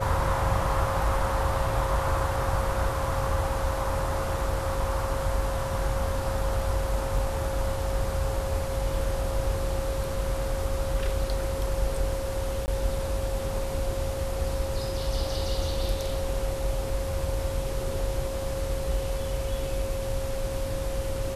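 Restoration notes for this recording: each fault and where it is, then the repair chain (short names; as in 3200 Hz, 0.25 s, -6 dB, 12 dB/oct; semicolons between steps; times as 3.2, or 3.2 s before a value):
tone 540 Hz -32 dBFS
7.18 gap 2.3 ms
12.66–12.68 gap 19 ms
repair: notch 540 Hz, Q 30; interpolate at 7.18, 2.3 ms; interpolate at 12.66, 19 ms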